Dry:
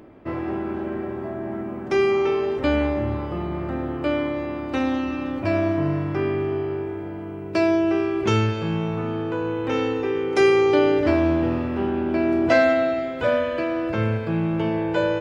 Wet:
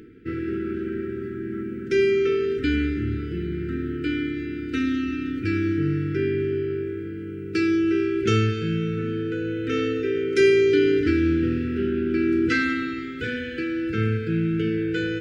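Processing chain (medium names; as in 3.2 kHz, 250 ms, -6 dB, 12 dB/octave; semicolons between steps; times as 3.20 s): reverse; upward compressor, threshold -36 dBFS; reverse; brick-wall FIR band-stop 490–1300 Hz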